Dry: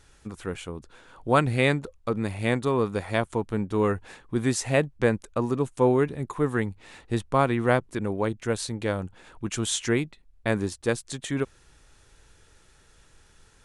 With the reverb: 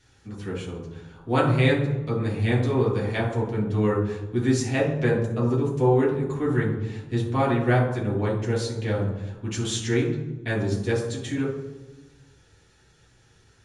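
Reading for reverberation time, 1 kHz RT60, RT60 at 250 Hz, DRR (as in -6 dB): 1.1 s, 1.0 s, 1.4 s, -5.0 dB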